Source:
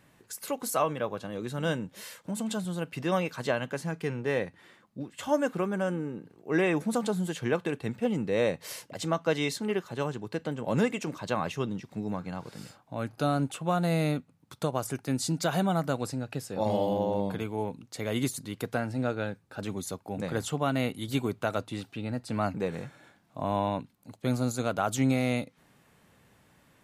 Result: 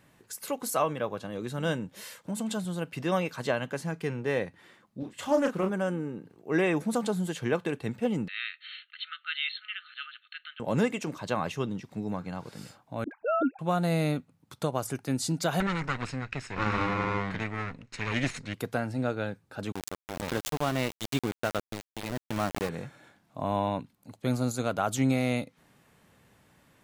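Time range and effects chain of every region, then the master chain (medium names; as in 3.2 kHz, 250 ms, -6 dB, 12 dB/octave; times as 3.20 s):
4.99–5.70 s: doubling 32 ms -6 dB + loudspeaker Doppler distortion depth 0.16 ms
8.28–10.60 s: brick-wall FIR band-pass 1.2–4.4 kHz + peaking EQ 3 kHz +8 dB 0.34 oct
13.04–13.59 s: formants replaced by sine waves + phase dispersion highs, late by 75 ms, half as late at 460 Hz
15.60–18.54 s: comb filter that takes the minimum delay 0.74 ms + low-pass 7.6 kHz 24 dB/octave + peaking EQ 2 kHz +14 dB 0.73 oct
19.72–22.69 s: Chebyshev low-pass 7.7 kHz, order 4 + small samples zeroed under -30.5 dBFS + swell ahead of each attack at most 76 dB/s
whole clip: none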